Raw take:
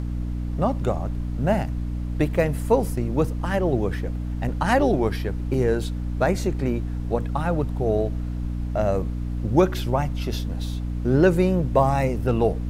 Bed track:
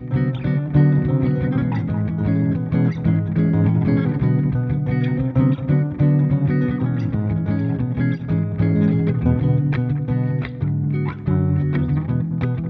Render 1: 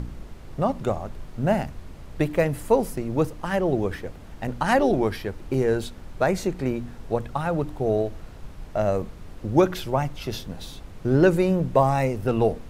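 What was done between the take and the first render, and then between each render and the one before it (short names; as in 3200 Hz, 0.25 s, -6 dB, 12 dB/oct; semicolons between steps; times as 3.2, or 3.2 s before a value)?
de-hum 60 Hz, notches 5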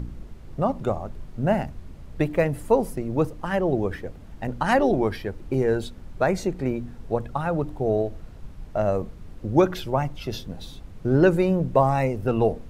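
denoiser 6 dB, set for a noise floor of -41 dBFS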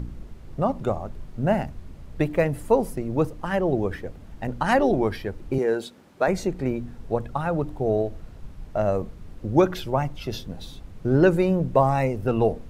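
5.58–6.28 HPF 250 Hz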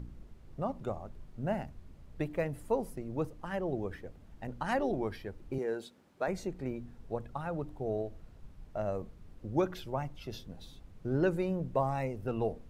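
gain -11.5 dB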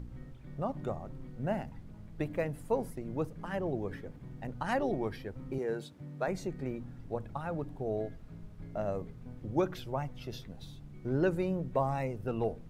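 add bed track -30 dB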